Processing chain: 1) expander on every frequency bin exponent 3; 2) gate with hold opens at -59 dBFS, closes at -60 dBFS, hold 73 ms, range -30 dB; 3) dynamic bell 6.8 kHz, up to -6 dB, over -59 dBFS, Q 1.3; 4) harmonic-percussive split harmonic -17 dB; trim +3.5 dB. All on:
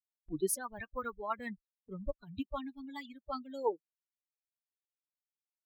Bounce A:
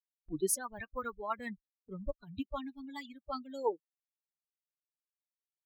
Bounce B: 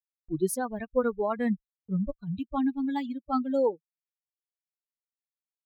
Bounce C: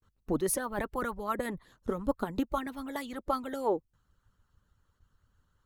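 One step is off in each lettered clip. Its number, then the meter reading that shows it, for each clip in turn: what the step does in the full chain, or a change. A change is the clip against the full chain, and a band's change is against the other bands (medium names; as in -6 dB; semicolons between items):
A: 3, 8 kHz band +3.0 dB; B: 4, 125 Hz band +7.5 dB; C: 1, momentary loudness spread change -4 LU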